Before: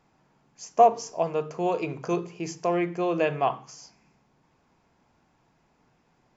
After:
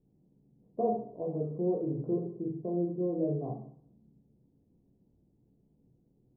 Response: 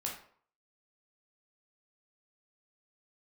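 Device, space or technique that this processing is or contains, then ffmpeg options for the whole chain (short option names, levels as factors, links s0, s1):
next room: -filter_complex "[0:a]asettb=1/sr,asplit=3[s0][s1][s2];[s0]atrim=end=0.764[s3];[s1]atrim=start=0.76:end=2.57,asetpts=PTS-STARTPTS,afade=t=in:d=0.004:c=qsin,afade=t=out:st=1.806:d=0.004:c=qsin,equalizer=f=2000:t=o:w=2.6:g=6[s4];[s2]atrim=start=2.566[s5];[s3][s4]acrossfade=d=0.004:c1=hsin:c2=qsin[s6];[s6][s5]acrossfade=d=0.004:c1=qsin:c2=hsin,lowpass=f=400:w=0.5412,lowpass=f=400:w=1.3066[s7];[1:a]atrim=start_sample=2205[s8];[s7][s8]afir=irnorm=-1:irlink=0"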